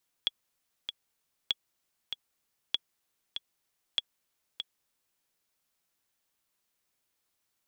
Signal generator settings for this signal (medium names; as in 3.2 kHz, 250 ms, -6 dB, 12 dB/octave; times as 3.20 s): metronome 97 bpm, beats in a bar 2, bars 4, 3.36 kHz, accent 8 dB -13.5 dBFS